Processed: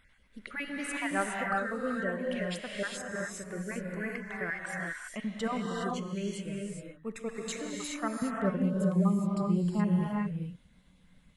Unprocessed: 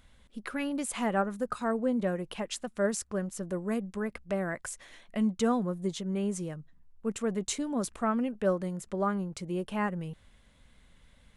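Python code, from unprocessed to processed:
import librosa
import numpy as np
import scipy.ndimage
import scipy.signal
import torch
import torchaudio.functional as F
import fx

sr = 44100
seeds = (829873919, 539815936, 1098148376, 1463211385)

y = fx.spec_dropout(x, sr, seeds[0], share_pct=31)
y = fx.peak_eq(y, sr, hz=fx.steps((0.0, 1900.0), (8.22, 180.0)), db=11.0, octaves=1.1)
y = fx.rev_gated(y, sr, seeds[1], gate_ms=440, shape='rising', drr_db=-1.5)
y = y * librosa.db_to_amplitude(-6.5)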